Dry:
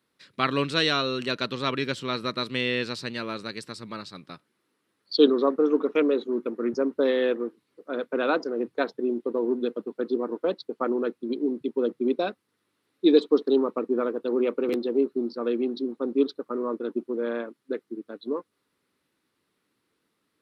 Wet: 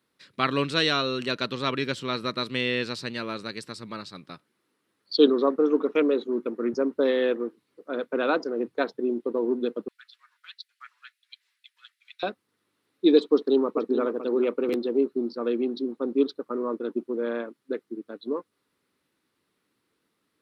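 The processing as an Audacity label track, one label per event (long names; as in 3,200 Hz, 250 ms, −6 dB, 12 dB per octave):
9.880000	12.230000	Butterworth high-pass 1,700 Hz
13.320000	14.010000	delay throw 430 ms, feedback 15%, level −10.5 dB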